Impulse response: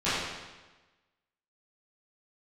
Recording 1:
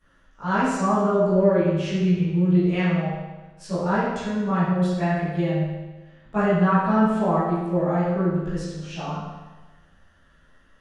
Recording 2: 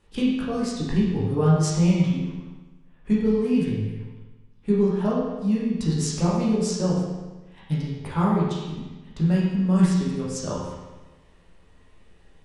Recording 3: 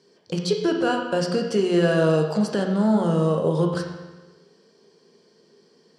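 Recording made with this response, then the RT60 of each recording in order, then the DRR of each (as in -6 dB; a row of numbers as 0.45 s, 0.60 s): 1; 1.2 s, 1.2 s, 1.2 s; -16.0 dB, -7.0 dB, 2.0 dB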